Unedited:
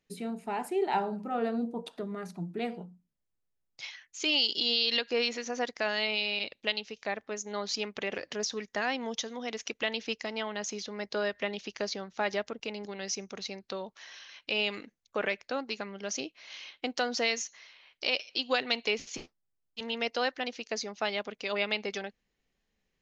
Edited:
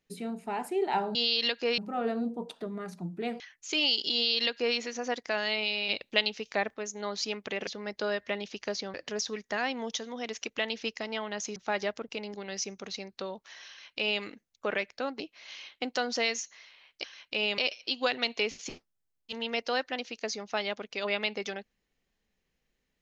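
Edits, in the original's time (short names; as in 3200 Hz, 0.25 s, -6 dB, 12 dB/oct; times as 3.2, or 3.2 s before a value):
2.77–3.91 cut
4.64–5.27 copy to 1.15
6.39–7.25 gain +4.5 dB
10.8–12.07 move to 8.18
14.2–14.74 copy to 18.06
15.71–16.22 cut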